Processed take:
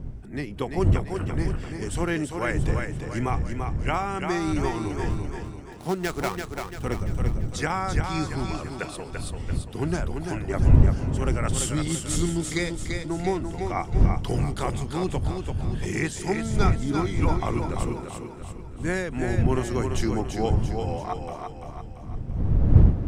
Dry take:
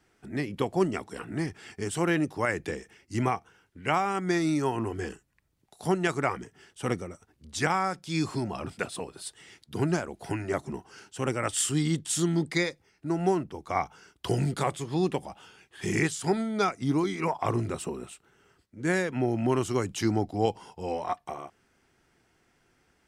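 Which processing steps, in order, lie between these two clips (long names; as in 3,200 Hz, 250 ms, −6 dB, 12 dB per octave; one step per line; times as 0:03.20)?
0:05.10–0:06.85: gap after every zero crossing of 0.11 ms
wind on the microphone 100 Hz −25 dBFS
feedback echo with a high-pass in the loop 340 ms, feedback 49%, high-pass 160 Hz, level −5 dB
level −1 dB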